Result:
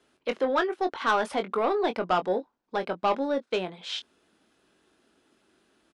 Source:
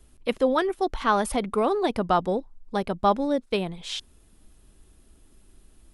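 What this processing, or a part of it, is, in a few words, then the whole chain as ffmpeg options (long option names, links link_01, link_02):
intercom: -filter_complex "[0:a]highpass=310,lowpass=4800,equalizer=frequency=1500:width_type=o:width=0.29:gain=5.5,asoftclip=type=tanh:threshold=-16.5dB,asplit=2[link_01][link_02];[link_02]adelay=22,volume=-9dB[link_03];[link_01][link_03]amix=inputs=2:normalize=0"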